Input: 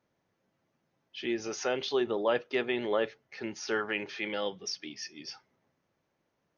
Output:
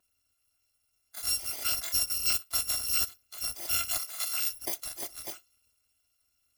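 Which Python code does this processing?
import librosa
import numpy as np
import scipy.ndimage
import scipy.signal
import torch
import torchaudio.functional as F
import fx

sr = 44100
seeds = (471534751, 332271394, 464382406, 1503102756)

p1 = fx.bit_reversed(x, sr, seeds[0], block=256)
p2 = fx.highpass(p1, sr, hz=510.0, slope=12, at=(3.98, 4.52))
p3 = fx.rider(p2, sr, range_db=5, speed_s=0.5)
p4 = p2 + (p3 * librosa.db_to_amplitude(-1.0))
y = p4 * librosa.db_to_amplitude(-4.5)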